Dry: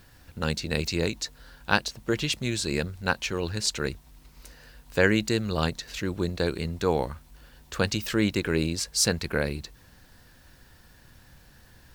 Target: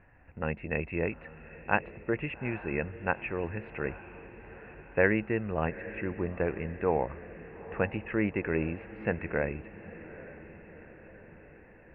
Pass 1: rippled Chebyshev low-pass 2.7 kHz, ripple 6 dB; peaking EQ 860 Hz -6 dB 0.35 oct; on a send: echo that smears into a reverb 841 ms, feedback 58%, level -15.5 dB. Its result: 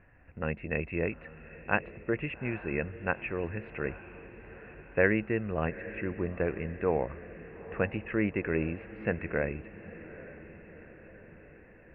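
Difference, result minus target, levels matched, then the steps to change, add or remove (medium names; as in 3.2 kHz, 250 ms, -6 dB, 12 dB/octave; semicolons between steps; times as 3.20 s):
1 kHz band -2.5 dB
remove: peaking EQ 860 Hz -6 dB 0.35 oct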